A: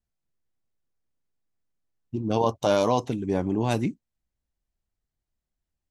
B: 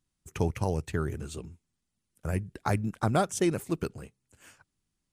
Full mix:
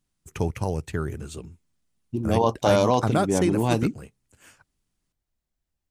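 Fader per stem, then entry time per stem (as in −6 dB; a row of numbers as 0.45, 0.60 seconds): +2.0, +2.0 decibels; 0.00, 0.00 seconds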